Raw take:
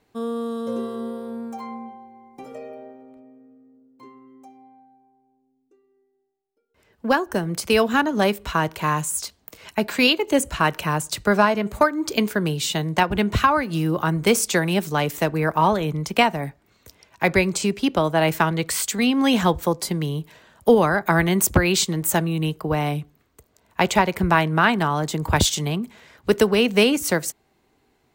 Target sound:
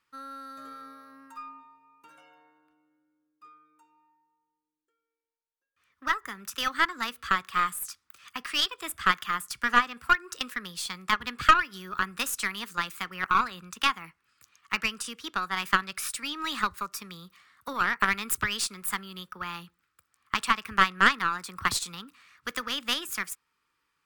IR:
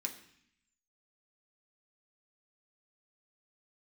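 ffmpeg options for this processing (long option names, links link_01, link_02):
-af "lowshelf=frequency=780:width_type=q:width=3:gain=-11.5,asetrate=51597,aresample=44100,aeval=exprs='0.944*(cos(1*acos(clip(val(0)/0.944,-1,1)))-cos(1*PI/2))+0.422*(cos(2*acos(clip(val(0)/0.944,-1,1)))-cos(2*PI/2))+0.0841*(cos(4*acos(clip(val(0)/0.944,-1,1)))-cos(4*PI/2))+0.0266*(cos(6*acos(clip(val(0)/0.944,-1,1)))-cos(6*PI/2))+0.0376*(cos(7*acos(clip(val(0)/0.944,-1,1)))-cos(7*PI/2))':channel_layout=same,volume=-6.5dB"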